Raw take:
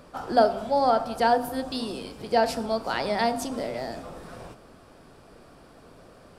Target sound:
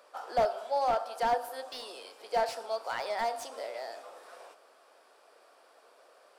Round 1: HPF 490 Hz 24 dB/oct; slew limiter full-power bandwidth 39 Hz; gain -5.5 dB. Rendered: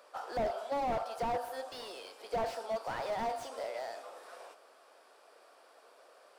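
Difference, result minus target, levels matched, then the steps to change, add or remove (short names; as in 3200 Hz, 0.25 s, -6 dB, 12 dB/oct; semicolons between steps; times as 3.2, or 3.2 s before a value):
slew limiter: distortion +12 dB
change: slew limiter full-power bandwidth 114 Hz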